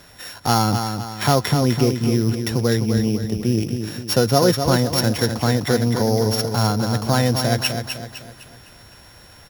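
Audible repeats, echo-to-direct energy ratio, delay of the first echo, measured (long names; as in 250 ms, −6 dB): 4, −6.0 dB, 254 ms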